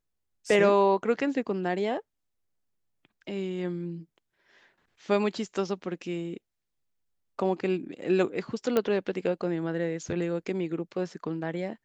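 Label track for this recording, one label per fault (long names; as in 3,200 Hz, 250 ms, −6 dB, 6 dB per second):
8.770000	8.770000	click −12 dBFS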